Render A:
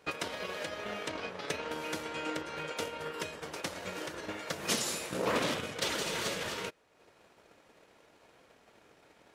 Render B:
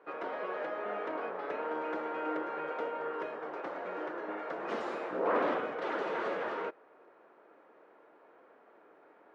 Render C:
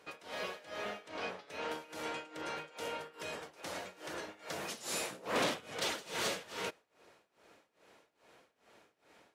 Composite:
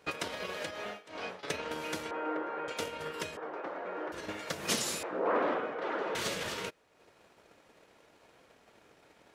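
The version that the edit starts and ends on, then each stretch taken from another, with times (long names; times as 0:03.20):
A
0:00.71–0:01.43: punch in from C
0:02.11–0:02.68: punch in from B
0:03.37–0:04.12: punch in from B
0:05.03–0:06.15: punch in from B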